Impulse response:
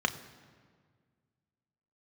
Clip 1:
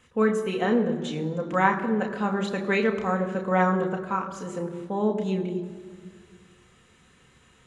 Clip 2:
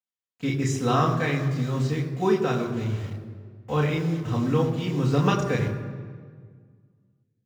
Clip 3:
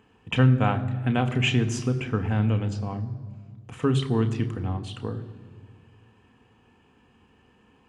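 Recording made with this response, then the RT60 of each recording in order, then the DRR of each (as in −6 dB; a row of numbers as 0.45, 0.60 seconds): 3; 1.8, 1.8, 1.8 seconds; 2.0, −3.0, 6.5 decibels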